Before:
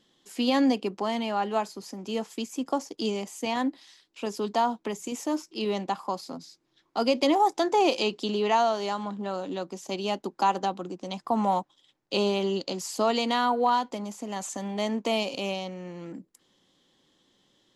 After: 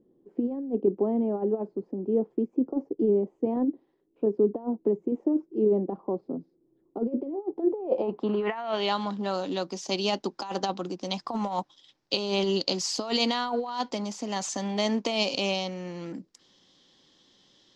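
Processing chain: compressor with a negative ratio -27 dBFS, ratio -0.5; low-pass sweep 400 Hz -> 5.3 kHz, 7.70–9.10 s

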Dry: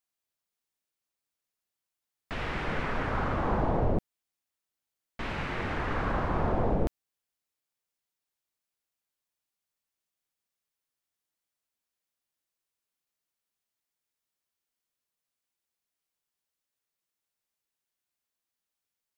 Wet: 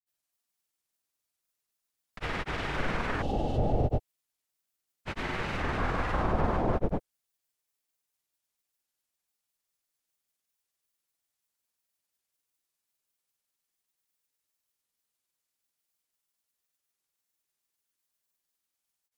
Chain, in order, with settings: treble shelf 5.5 kHz +8 dB; spectral replace 3.12–3.95 s, 880–2600 Hz after; granulator 100 ms, grains 20 per s, spray 274 ms; trim +1.5 dB

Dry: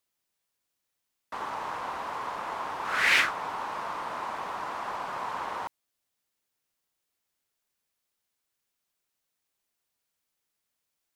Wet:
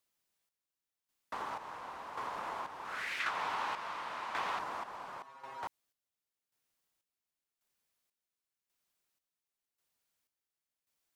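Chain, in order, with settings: 5.22–5.63 s: inharmonic resonator 130 Hz, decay 0.3 s, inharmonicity 0.002; square tremolo 0.92 Hz, depth 65%, duty 45%; compression 6:1, threshold -35 dBFS, peak gain reduction 8.5 dB; 3.20–4.59 s: peaking EQ 2.9 kHz +9 dB 2.6 oct; trim -1.5 dB

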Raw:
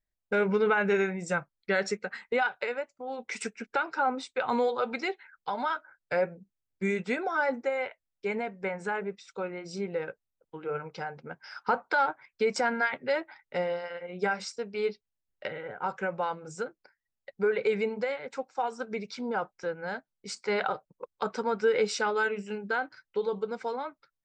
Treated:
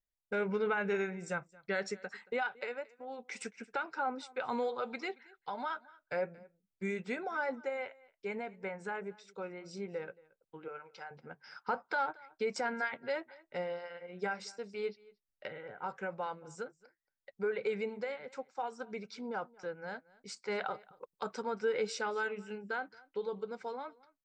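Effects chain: 10.68–11.11 s: high-pass 940 Hz 6 dB/octave; 20.74–21.42 s: treble shelf 7.2 kHz +9.5 dB; delay 226 ms -23 dB; trim -7.5 dB

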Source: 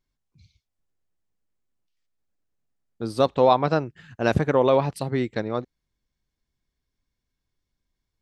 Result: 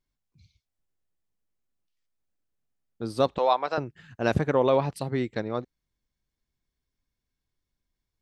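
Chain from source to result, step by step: 3.38–3.78 s: high-pass 580 Hz 12 dB/octave; trim -3 dB

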